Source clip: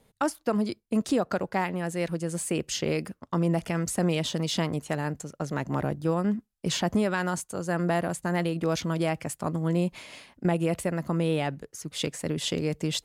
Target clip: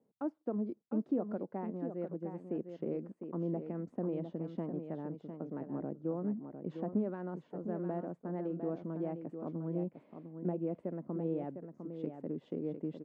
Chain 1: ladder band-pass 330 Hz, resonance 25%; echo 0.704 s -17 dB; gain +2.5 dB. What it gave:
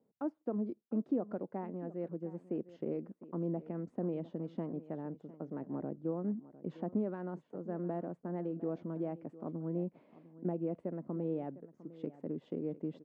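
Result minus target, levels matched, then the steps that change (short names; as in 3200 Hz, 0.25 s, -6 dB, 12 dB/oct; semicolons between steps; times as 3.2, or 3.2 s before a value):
echo-to-direct -9 dB
change: echo 0.704 s -8 dB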